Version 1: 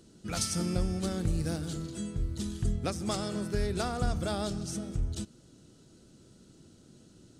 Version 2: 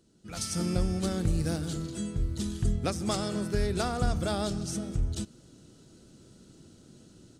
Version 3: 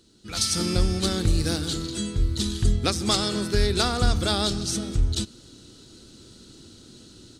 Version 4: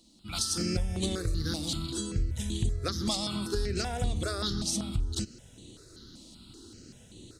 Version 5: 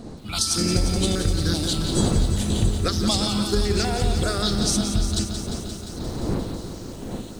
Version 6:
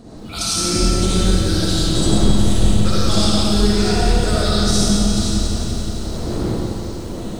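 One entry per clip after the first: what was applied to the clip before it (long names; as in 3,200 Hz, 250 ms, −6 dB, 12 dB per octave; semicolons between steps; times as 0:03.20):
automatic gain control gain up to 11 dB; level −8.5 dB
graphic EQ with 15 bands 160 Hz −8 dB, 630 Hz −6 dB, 4,000 Hz +9 dB; level +7.5 dB
downward compressor 5 to 1, threshold −25 dBFS, peak gain reduction 9.5 dB; step-sequenced phaser 5.2 Hz 410–5,100 Hz
wind on the microphone 300 Hz −40 dBFS; feedback echo at a low word length 175 ms, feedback 80%, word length 9 bits, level −8.5 dB; level +7.5 dB
comb and all-pass reverb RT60 2.4 s, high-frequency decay 0.85×, pre-delay 20 ms, DRR −8 dB; level −3 dB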